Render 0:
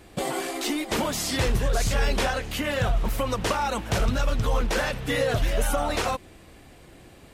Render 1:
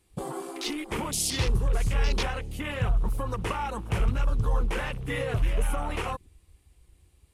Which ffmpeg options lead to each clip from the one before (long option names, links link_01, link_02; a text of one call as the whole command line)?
ffmpeg -i in.wav -af "afwtdn=0.0224,equalizer=frequency=250:width_type=o:width=0.67:gain=-7,equalizer=frequency=630:width_type=o:width=0.67:gain=-11,equalizer=frequency=1600:width_type=o:width=0.67:gain=-7,equalizer=frequency=10000:width_type=o:width=0.67:gain=10" out.wav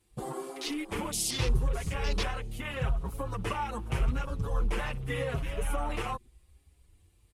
ffmpeg -i in.wav -filter_complex "[0:a]asplit=2[link_01][link_02];[link_02]adelay=6.3,afreqshift=0.83[link_03];[link_01][link_03]amix=inputs=2:normalize=1" out.wav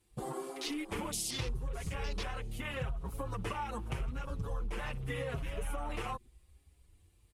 ffmpeg -i in.wav -af "acompressor=threshold=-31dB:ratio=6,volume=-2dB" out.wav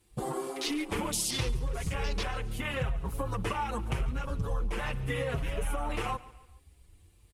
ffmpeg -i in.wav -af "aecho=1:1:142|284|426:0.112|0.0494|0.0217,volume=5.5dB" out.wav